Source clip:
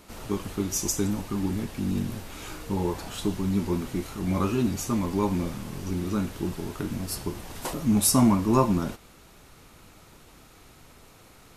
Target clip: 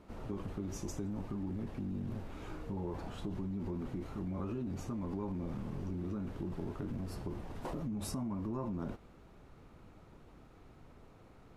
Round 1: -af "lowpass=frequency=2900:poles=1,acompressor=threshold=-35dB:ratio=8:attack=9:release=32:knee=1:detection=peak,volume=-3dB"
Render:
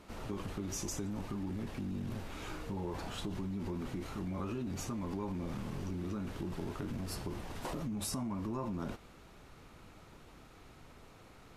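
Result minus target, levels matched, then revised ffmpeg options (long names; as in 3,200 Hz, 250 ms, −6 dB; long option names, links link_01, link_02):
4,000 Hz band +7.5 dB
-af "lowpass=frequency=760:poles=1,acompressor=threshold=-35dB:ratio=8:attack=9:release=32:knee=1:detection=peak,volume=-3dB"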